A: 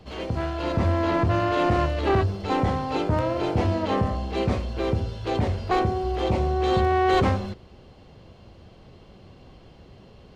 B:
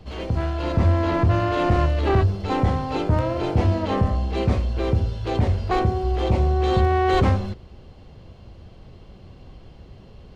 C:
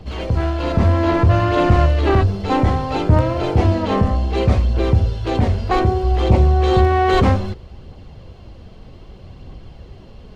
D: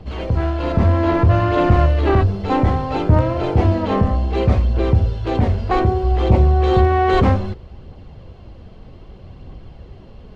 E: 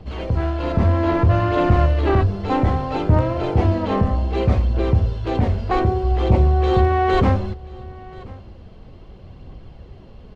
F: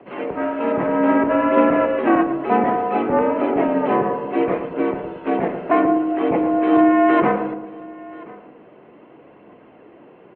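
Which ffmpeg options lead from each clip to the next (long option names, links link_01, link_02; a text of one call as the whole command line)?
ffmpeg -i in.wav -af "lowshelf=frequency=100:gain=10" out.wav
ffmpeg -i in.wav -af "aphaser=in_gain=1:out_gain=1:delay=4.8:decay=0.27:speed=0.63:type=triangular,volume=4.5dB" out.wav
ffmpeg -i in.wav -af "highshelf=frequency=4400:gain=-9.5" out.wav
ffmpeg -i in.wav -af "aecho=1:1:1032:0.0794,volume=-2dB" out.wav
ffmpeg -i in.wav -filter_complex "[0:a]asplit=2[link_01][link_02];[link_02]adelay=113,lowpass=frequency=1400:poles=1,volume=-8dB,asplit=2[link_03][link_04];[link_04]adelay=113,lowpass=frequency=1400:poles=1,volume=0.52,asplit=2[link_05][link_06];[link_06]adelay=113,lowpass=frequency=1400:poles=1,volume=0.52,asplit=2[link_07][link_08];[link_08]adelay=113,lowpass=frequency=1400:poles=1,volume=0.52,asplit=2[link_09][link_10];[link_10]adelay=113,lowpass=frequency=1400:poles=1,volume=0.52,asplit=2[link_11][link_12];[link_12]adelay=113,lowpass=frequency=1400:poles=1,volume=0.52[link_13];[link_01][link_03][link_05][link_07][link_09][link_11][link_13]amix=inputs=7:normalize=0,highpass=frequency=310:width_type=q:width=0.5412,highpass=frequency=310:width_type=q:width=1.307,lowpass=frequency=2600:width_type=q:width=0.5176,lowpass=frequency=2600:width_type=q:width=0.7071,lowpass=frequency=2600:width_type=q:width=1.932,afreqshift=-58,volume=4.5dB" out.wav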